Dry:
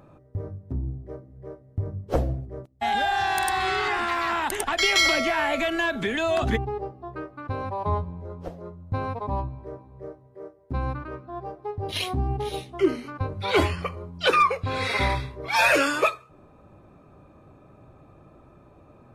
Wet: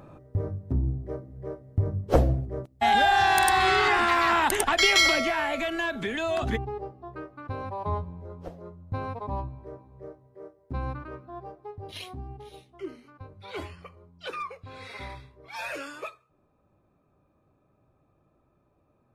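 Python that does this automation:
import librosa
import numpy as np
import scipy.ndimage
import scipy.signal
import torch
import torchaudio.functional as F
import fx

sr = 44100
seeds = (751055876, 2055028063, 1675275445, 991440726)

y = fx.gain(x, sr, db=fx.line((4.53, 3.5), (5.53, -4.0), (11.25, -4.0), (12.49, -16.0)))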